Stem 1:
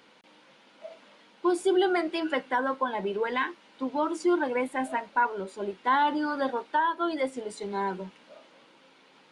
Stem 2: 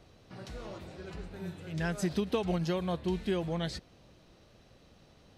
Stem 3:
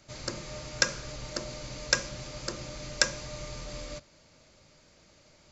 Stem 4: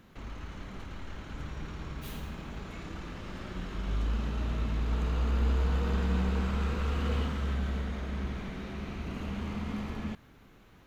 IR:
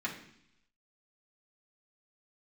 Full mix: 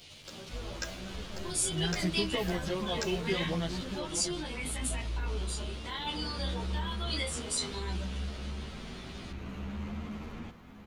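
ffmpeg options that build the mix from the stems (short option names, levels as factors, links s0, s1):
-filter_complex "[0:a]alimiter=level_in=1.19:limit=0.0631:level=0:latency=1:release=25,volume=0.841,aexciter=amount=12.1:drive=3.5:freq=2200,flanger=delay=19.5:depth=5.6:speed=0.22,volume=0.668[s0];[1:a]volume=1.12,asplit=2[s1][s2];[s2]volume=0.447[s3];[2:a]acrusher=bits=5:mix=0:aa=0.5,volume=0.299[s4];[3:a]asoftclip=type=tanh:threshold=0.0251,adelay=350,volume=1.06,asplit=2[s5][s6];[s6]volume=0.299[s7];[s3][s7]amix=inputs=2:normalize=0,aecho=0:1:636:1[s8];[s0][s1][s4][s5][s8]amix=inputs=5:normalize=0,asplit=2[s9][s10];[s10]adelay=11.1,afreqshift=0.71[s11];[s9][s11]amix=inputs=2:normalize=1"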